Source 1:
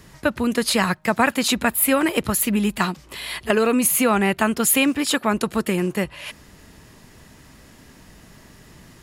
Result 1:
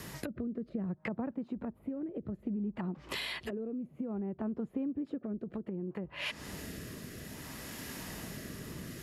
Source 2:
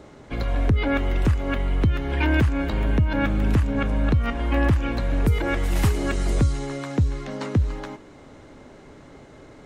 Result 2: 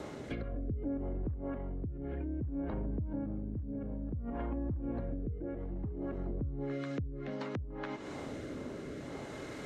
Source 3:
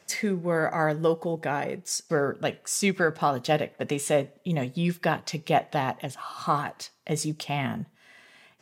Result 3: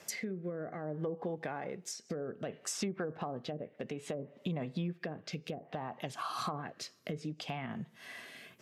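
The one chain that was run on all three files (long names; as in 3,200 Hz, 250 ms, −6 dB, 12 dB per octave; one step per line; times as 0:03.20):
treble cut that deepens with the level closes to 370 Hz, closed at −17.5 dBFS
high-pass filter 110 Hz 6 dB per octave
parametric band 12,000 Hz +11 dB 0.26 octaves
brickwall limiter −18 dBFS
downward compressor 8 to 1, threshold −40 dBFS
rotating-speaker cabinet horn 0.6 Hz
level +6.5 dB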